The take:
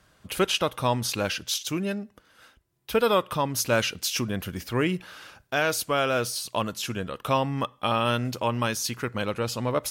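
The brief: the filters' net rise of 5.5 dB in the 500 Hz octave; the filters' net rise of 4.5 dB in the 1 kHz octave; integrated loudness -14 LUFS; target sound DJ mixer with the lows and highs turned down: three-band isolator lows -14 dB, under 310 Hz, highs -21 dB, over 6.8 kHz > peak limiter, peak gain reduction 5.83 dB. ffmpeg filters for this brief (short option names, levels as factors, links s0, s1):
-filter_complex "[0:a]acrossover=split=310 6800:gain=0.2 1 0.0891[s0][s1][s2];[s0][s1][s2]amix=inputs=3:normalize=0,equalizer=f=500:t=o:g=6.5,equalizer=f=1000:t=o:g=4,volume=3.76,alimiter=limit=1:level=0:latency=1"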